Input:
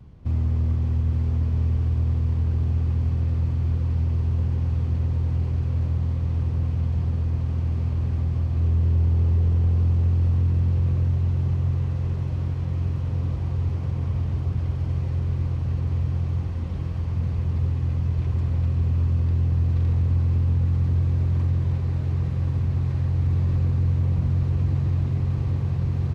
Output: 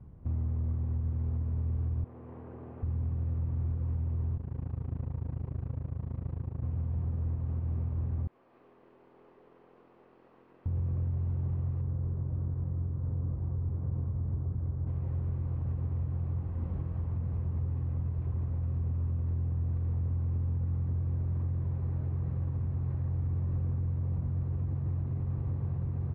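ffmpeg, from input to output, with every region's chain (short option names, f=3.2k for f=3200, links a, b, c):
-filter_complex "[0:a]asettb=1/sr,asplit=3[a][b][c];[a]atrim=end=2.044[d];[b]atrim=start=2.04:end=2.83,asetpts=PTS-STARTPTS,afade=t=in:d=0.004:c=qsin,afade=t=out:st=0.786:d=0.004:c=qsin,equalizer=f=1.2k:t=o:w=2.7:g=-5.5,acontrast=34,highpass=450,lowpass=2.1k[e];[c]atrim=start=2.826[f];[d][e]acrossfade=d=0.004:c1=hsin:c2=qsin[g];[g][f]acrossfade=d=0.004:c1=qsin:c2=hsin,asettb=1/sr,asplit=3[h][i][j];[h]atrim=end=4.374[k];[i]atrim=start=4.37:end=6.64,asetpts=PTS-STARTPTS,afade=t=in:d=0.004:c=qsin,afade=t=out:st=2.266:d=0.004:c=qsin,highpass=100,tremolo=f=27:d=0.919[l];[j]atrim=start=6.636[m];[k][l]acrossfade=d=0.004:c1=hsin:c2=qsin[n];[n][m]acrossfade=d=0.004:c1=qsin:c2=hsin,asettb=1/sr,asplit=3[o][p][q];[o]atrim=end=8.274[r];[p]atrim=start=8.27:end=10.66,asetpts=PTS-STARTPTS,afade=t=in:d=0.004:c=qsin,afade=t=out:st=2.386:d=0.004:c=qsin,highpass=f=390:w=0.5412,highpass=f=390:w=1.3066,equalizer=f=570:w=0.48:g=-9.5,aeval=exprs='(tanh(79.4*val(0)+0.55)-tanh(0.55))/79.4':c=same[s];[q]atrim=start=10.656[t];[r][s]acrossfade=d=0.004:c1=hsin:c2=qsin[u];[u][t]acrossfade=d=0.004:c1=qsin:c2=hsin,asettb=1/sr,asplit=3[v][w][x];[v]atrim=end=11.814[y];[w]atrim=start=11.81:end=14.87,asetpts=PTS-STARTPTS,afade=t=in:d=0.004:c=qsin,afade=t=out:st=3.056:d=0.004:c=qsin,lowpass=1.3k,equalizer=f=780:t=o:w=1.2:g=-4[z];[x]atrim=start=14.866[aa];[y][z]acrossfade=d=0.004:c1=hsin:c2=qsin[ab];[ab][aa]acrossfade=d=0.004:c1=qsin:c2=hsin,lowpass=1.3k,alimiter=limit=-21.5dB:level=0:latency=1:release=274,volume=-4dB"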